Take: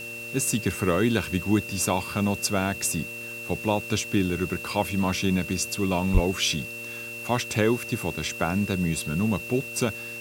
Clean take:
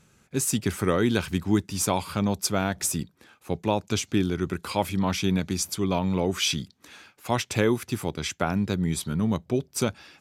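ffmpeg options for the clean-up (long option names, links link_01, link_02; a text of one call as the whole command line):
ffmpeg -i in.wav -filter_complex "[0:a]bandreject=frequency=117.3:width_type=h:width=4,bandreject=frequency=234.6:width_type=h:width=4,bandreject=frequency=351.9:width_type=h:width=4,bandreject=frequency=469.2:width_type=h:width=4,bandreject=frequency=586.5:width_type=h:width=4,bandreject=frequency=2700:width=30,asplit=3[link_01][link_02][link_03];[link_01]afade=type=out:start_time=6.13:duration=0.02[link_04];[link_02]highpass=frequency=140:width=0.5412,highpass=frequency=140:width=1.3066,afade=type=in:start_time=6.13:duration=0.02,afade=type=out:start_time=6.25:duration=0.02[link_05];[link_03]afade=type=in:start_time=6.25:duration=0.02[link_06];[link_04][link_05][link_06]amix=inputs=3:normalize=0,afwtdn=0.005" out.wav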